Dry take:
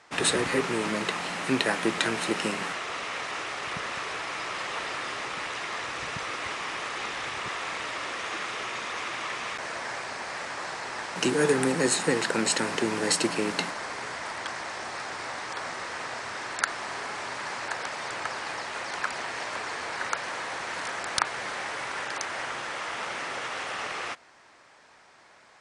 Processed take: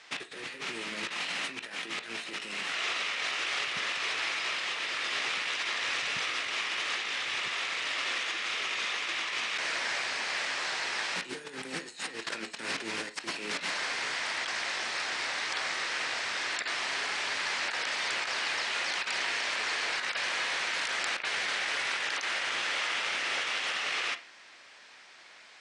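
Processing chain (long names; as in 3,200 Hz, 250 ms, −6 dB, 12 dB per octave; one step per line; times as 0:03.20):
meter weighting curve D
compressor whose output falls as the input rises −28 dBFS, ratio −0.5
convolution reverb RT60 0.35 s, pre-delay 7 ms, DRR 8 dB
level −6 dB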